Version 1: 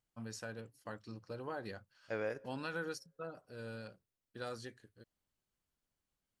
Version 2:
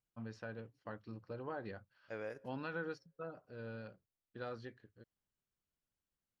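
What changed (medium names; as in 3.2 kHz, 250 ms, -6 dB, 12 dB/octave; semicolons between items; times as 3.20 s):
first voice: add distance through air 270 m; second voice -6.0 dB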